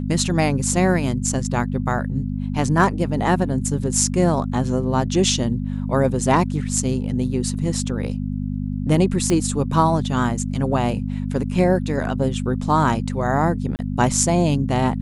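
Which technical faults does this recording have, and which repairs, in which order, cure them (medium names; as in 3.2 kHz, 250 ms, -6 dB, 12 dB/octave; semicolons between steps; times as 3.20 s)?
hum 50 Hz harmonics 5 -25 dBFS
9.30 s: pop -9 dBFS
13.76–13.79 s: dropout 29 ms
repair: de-click; de-hum 50 Hz, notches 5; interpolate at 13.76 s, 29 ms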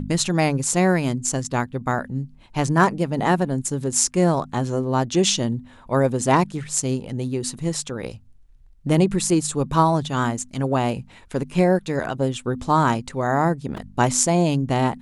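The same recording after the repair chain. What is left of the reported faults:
9.30 s: pop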